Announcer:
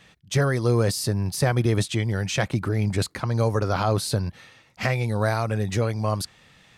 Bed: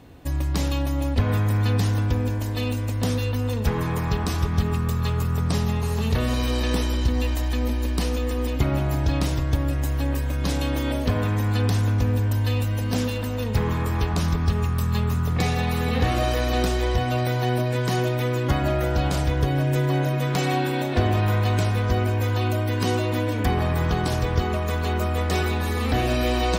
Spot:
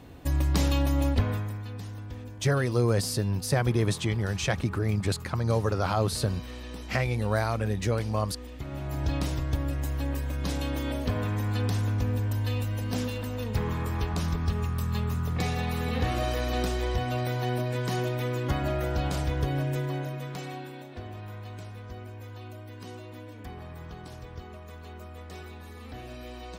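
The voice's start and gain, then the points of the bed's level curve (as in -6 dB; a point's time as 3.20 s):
2.10 s, -3.5 dB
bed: 1.09 s -0.5 dB
1.65 s -17 dB
8.59 s -17 dB
9.05 s -6 dB
19.58 s -6 dB
20.94 s -19.5 dB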